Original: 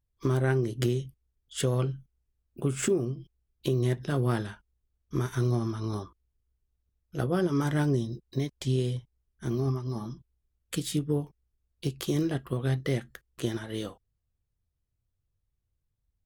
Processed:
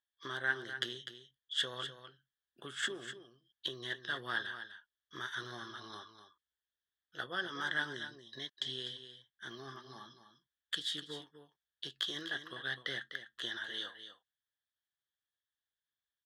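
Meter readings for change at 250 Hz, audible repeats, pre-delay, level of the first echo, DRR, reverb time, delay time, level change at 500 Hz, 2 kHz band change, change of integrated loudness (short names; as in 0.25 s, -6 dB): -21.5 dB, 1, none, -10.5 dB, none, none, 0.25 s, -17.5 dB, +4.0 dB, -9.5 dB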